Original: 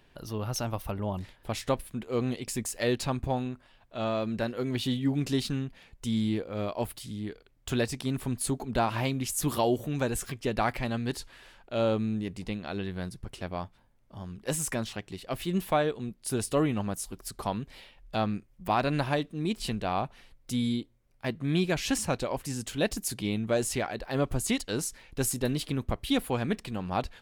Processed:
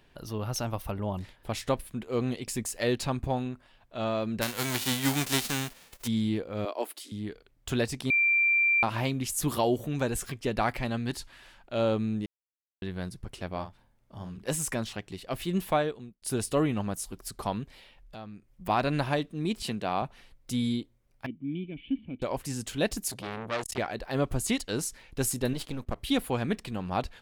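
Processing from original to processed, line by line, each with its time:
0:04.41–0:06.06: spectral envelope flattened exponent 0.3
0:06.65–0:07.12: Butterworth high-pass 270 Hz 48 dB per octave
0:08.10–0:08.83: beep over 2,360 Hz −20.5 dBFS
0:11.06–0:11.73: parametric band 450 Hz −8 dB 0.36 octaves
0:12.26–0:12.82: silence
0:13.48–0:14.51: double-tracking delay 49 ms −8.5 dB
0:15.76–0:16.22: fade out
0:17.68–0:18.52: downward compressor 2 to 1, threshold −51 dBFS
0:19.62–0:20.02: high-pass filter 130 Hz
0:21.26–0:22.22: formant resonators in series i
0:23.10–0:23.78: saturating transformer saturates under 2,100 Hz
0:25.53–0:25.97: gain on one half-wave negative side −12 dB

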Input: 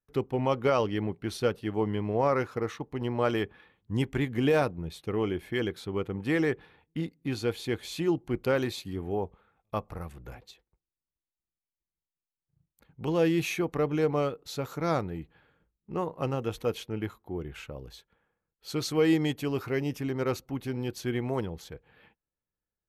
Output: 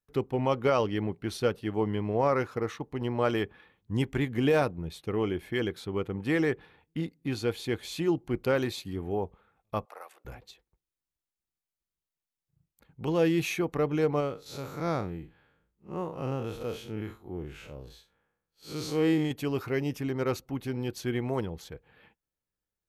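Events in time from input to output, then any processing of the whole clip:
0:09.85–0:10.25: high-pass filter 540 Hz 24 dB per octave
0:14.20–0:19.31: spectrum smeared in time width 109 ms

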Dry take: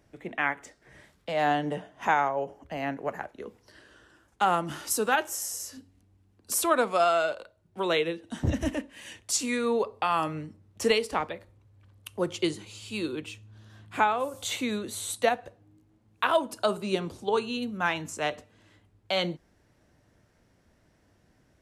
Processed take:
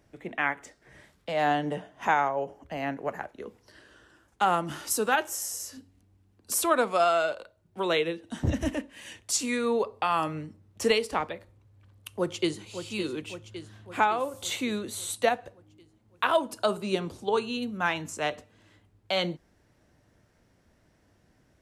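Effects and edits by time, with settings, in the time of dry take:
0:12.08–0:12.65: delay throw 560 ms, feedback 60%, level −9.5 dB

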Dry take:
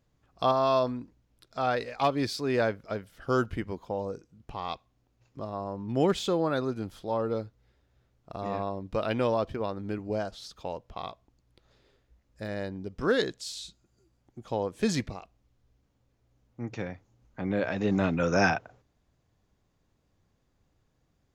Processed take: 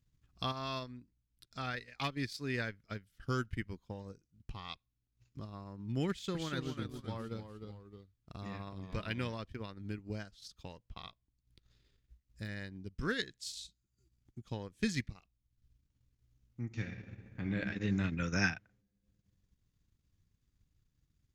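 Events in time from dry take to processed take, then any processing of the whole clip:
0:06.11–0:09.33: delay with pitch and tempo change per echo 236 ms, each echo −1 semitone, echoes 2, each echo −6 dB
0:16.63–0:17.59: thrown reverb, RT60 2.2 s, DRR 1 dB
whole clip: dynamic equaliser 1,900 Hz, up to +7 dB, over −49 dBFS, Q 2.2; transient designer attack +4 dB, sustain −10 dB; guitar amp tone stack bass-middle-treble 6-0-2; level +10.5 dB

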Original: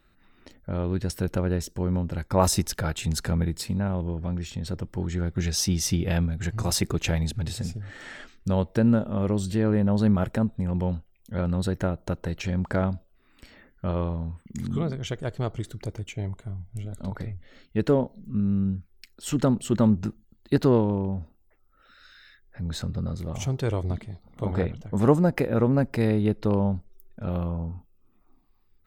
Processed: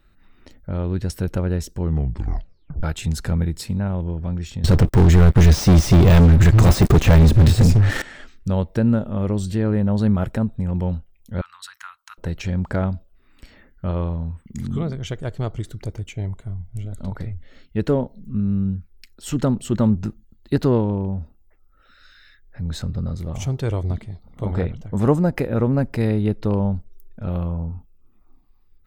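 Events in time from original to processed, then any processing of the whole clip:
0:01.80: tape stop 1.03 s
0:04.64–0:08.02: leveller curve on the samples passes 5
0:11.41–0:12.18: elliptic high-pass filter 1,100 Hz, stop band 50 dB
whole clip: de-essing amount 50%; low-shelf EQ 90 Hz +8.5 dB; level +1 dB

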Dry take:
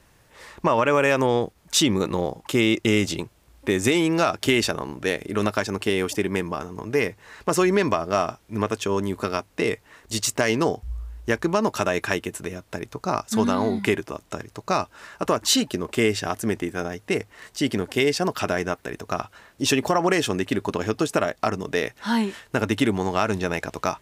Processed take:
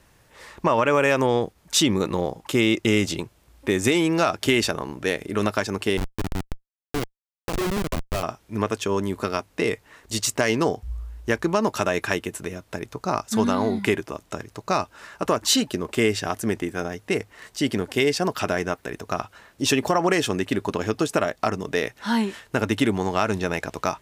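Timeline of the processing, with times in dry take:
0:05.97–0:08.23: comparator with hysteresis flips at −18 dBFS

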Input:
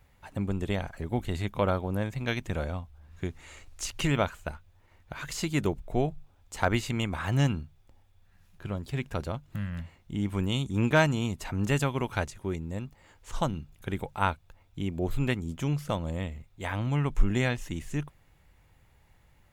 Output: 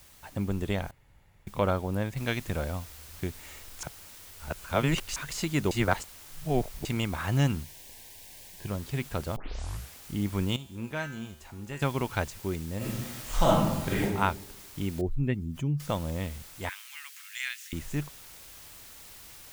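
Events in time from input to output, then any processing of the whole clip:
0:00.91–0:01.47: fill with room tone
0:02.17: noise floor change −56 dB −49 dB
0:03.83–0:05.16: reverse
0:05.71–0:06.85: reverse
0:07.63–0:08.68: Butterworth band-reject 1,300 Hz, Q 2.3
0:09.36: tape start 0.62 s
0:10.56–0:11.82: tuned comb filter 75 Hz, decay 0.71 s, harmonics odd, mix 80%
0:12.77–0:14.03: thrown reverb, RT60 1 s, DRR −7.5 dB
0:15.01–0:15.80: expanding power law on the bin magnitudes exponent 1.6
0:16.69–0:17.73: inverse Chebyshev high-pass filter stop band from 290 Hz, stop band 80 dB

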